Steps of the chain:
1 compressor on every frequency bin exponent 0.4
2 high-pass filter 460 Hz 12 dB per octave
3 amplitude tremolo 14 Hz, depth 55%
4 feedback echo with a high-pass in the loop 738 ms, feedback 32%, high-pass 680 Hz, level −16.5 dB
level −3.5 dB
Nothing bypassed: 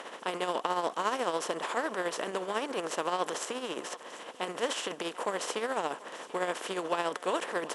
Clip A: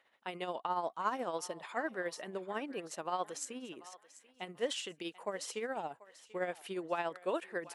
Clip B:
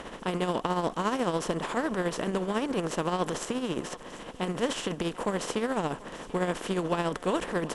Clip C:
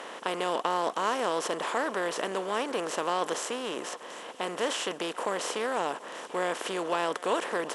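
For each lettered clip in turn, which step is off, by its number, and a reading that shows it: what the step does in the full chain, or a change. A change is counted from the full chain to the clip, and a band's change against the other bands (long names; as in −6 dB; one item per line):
1, 125 Hz band +2.5 dB
2, 125 Hz band +16.5 dB
3, change in integrated loudness +2.5 LU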